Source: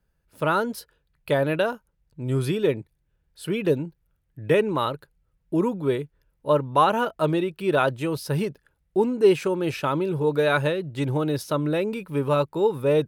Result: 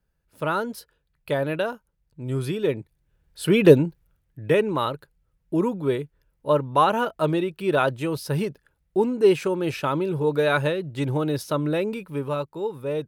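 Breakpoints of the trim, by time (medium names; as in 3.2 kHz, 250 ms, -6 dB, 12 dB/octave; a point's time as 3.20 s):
2.57 s -2.5 dB
3.70 s +9.5 dB
4.42 s 0 dB
11.89 s 0 dB
12.48 s -7 dB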